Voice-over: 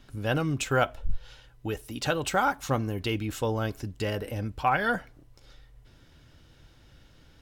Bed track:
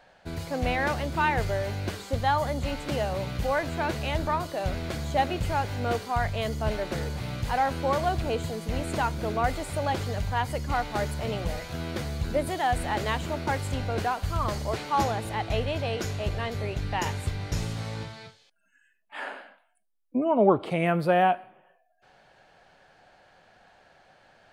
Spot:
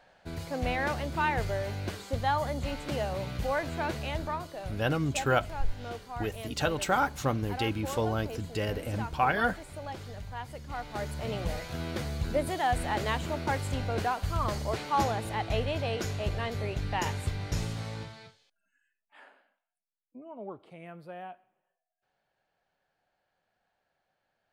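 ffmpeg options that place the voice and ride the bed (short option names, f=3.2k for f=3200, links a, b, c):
-filter_complex "[0:a]adelay=4550,volume=-1.5dB[a];[1:a]volume=6.5dB,afade=t=out:st=3.87:d=0.91:silence=0.375837,afade=t=in:st=10.68:d=0.81:silence=0.316228,afade=t=out:st=17.6:d=1.71:silence=0.105925[b];[a][b]amix=inputs=2:normalize=0"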